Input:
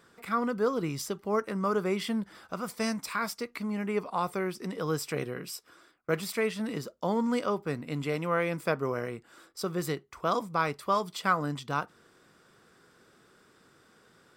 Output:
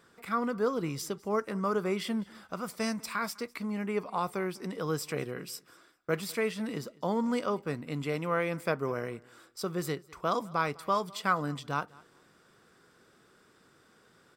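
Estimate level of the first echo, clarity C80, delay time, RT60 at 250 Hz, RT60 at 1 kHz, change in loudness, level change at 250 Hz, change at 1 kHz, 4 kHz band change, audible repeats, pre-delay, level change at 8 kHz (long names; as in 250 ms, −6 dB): −24.0 dB, no reverb audible, 202 ms, no reverb audible, no reverb audible, −1.5 dB, −1.5 dB, −1.5 dB, −1.5 dB, 1, no reverb audible, −1.5 dB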